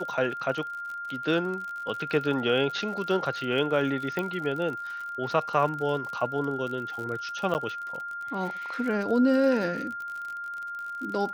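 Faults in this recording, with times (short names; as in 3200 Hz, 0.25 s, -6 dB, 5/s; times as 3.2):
crackle 52/s -34 dBFS
tone 1400 Hz -33 dBFS
4.19 pop -17 dBFS
7.54–7.55 gap 9.1 ms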